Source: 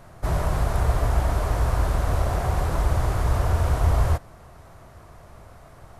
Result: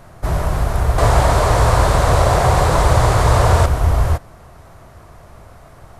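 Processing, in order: 0.98–3.66 graphic EQ 125/500/1000/2000/4000/8000 Hz +7/+8/+7/+5/+8/+9 dB; gain +5 dB

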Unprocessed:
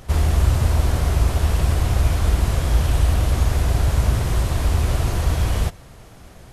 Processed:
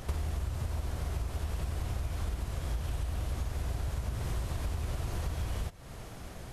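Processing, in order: compressor 16:1, threshold -29 dBFS, peak gain reduction 19 dB; gain -1 dB

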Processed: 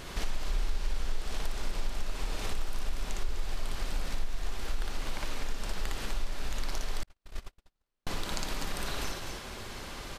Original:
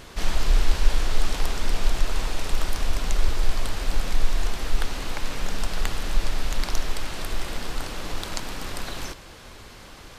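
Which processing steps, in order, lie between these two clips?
tapped delay 58/63/198/251 ms -3/-9.5/-15/-8.5 dB; 7.03–8.07 gate -17 dBFS, range -59 dB; compressor 3:1, threshold -30 dBFS, peak gain reduction 17 dB

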